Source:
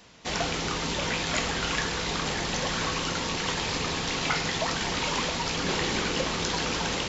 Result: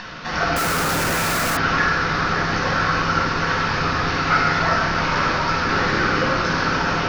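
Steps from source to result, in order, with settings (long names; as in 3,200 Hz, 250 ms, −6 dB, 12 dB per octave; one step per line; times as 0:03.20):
Butterworth low-pass 5,700 Hz 48 dB per octave
convolution reverb RT60 1.3 s, pre-delay 6 ms, DRR −6.5 dB
upward compression, threshold −22 dBFS
parametric band 1,400 Hz +14.5 dB 0.47 octaves
0:00.56–0:01.57: comparator with hysteresis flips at −30.5 dBFS
dynamic equaliser 3,300 Hz, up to −6 dB, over −35 dBFS, Q 2.1
level −4.5 dB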